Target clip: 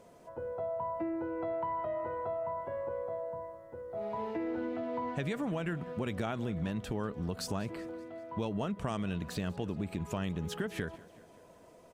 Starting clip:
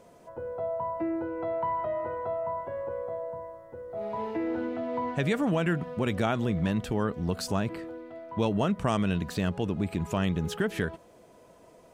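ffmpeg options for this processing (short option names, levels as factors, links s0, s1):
-af "acompressor=threshold=0.0316:ratio=3,aecho=1:1:192|384|576|768:0.0891|0.0499|0.0279|0.0157,volume=0.75" -ar 48000 -c:a libopus -b:a 64k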